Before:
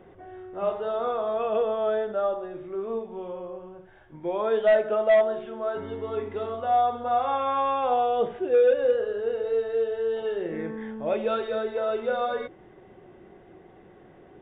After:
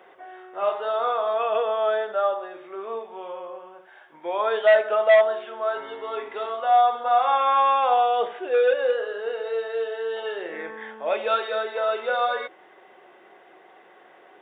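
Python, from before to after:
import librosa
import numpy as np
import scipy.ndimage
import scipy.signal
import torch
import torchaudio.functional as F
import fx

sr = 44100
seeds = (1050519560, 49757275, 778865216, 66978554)

y = scipy.signal.sosfilt(scipy.signal.butter(2, 780.0, 'highpass', fs=sr, output='sos'), x)
y = F.gain(torch.from_numpy(y), 8.0).numpy()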